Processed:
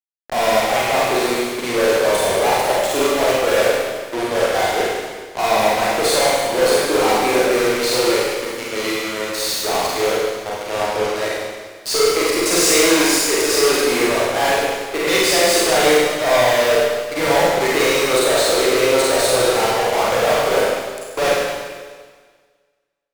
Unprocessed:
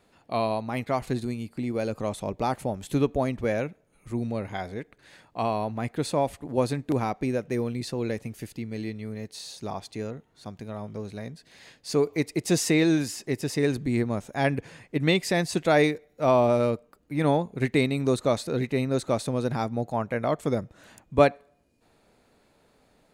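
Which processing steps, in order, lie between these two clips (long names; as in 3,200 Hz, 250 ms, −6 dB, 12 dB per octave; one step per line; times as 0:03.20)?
inverse Chebyshev high-pass filter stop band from 190 Hz, stop band 40 dB
fuzz pedal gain 44 dB, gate −40 dBFS
four-comb reverb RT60 1.6 s, combs from 33 ms, DRR −6.5 dB
level −6 dB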